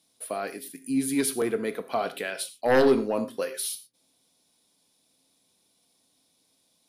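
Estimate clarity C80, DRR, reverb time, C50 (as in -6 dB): 16.5 dB, 10.0 dB, not exponential, 13.0 dB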